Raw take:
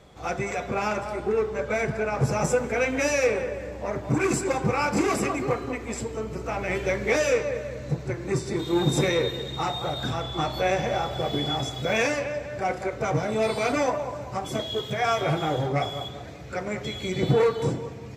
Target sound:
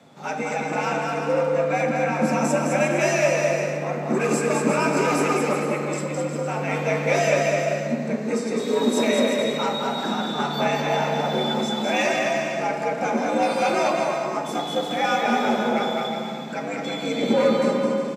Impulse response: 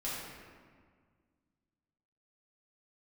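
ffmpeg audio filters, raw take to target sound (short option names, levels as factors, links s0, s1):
-filter_complex "[0:a]afreqshift=85,aecho=1:1:210|357|459.9|531.9|582.4:0.631|0.398|0.251|0.158|0.1,asplit=2[s0][s1];[1:a]atrim=start_sample=2205[s2];[s1][s2]afir=irnorm=-1:irlink=0,volume=0.501[s3];[s0][s3]amix=inputs=2:normalize=0,volume=0.794"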